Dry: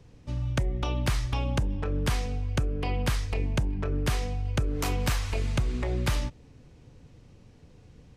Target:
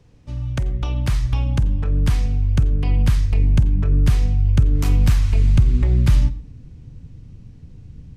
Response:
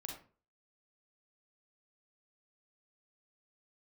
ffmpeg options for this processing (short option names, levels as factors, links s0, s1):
-filter_complex "[0:a]asubboost=boost=5.5:cutoff=230,asplit=2[s0][s1];[1:a]atrim=start_sample=2205,adelay=48[s2];[s1][s2]afir=irnorm=-1:irlink=0,volume=0.237[s3];[s0][s3]amix=inputs=2:normalize=0"